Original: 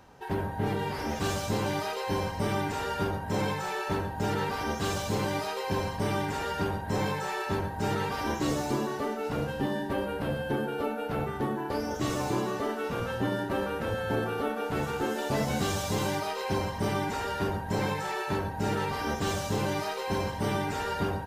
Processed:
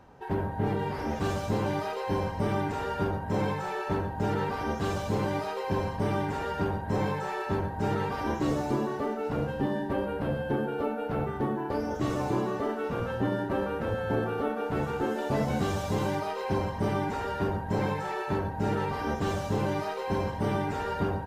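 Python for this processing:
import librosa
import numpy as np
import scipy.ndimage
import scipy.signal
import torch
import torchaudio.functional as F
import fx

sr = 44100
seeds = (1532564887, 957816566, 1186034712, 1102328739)

y = fx.high_shelf(x, sr, hz=2400.0, db=-11.0)
y = F.gain(torch.from_numpy(y), 1.5).numpy()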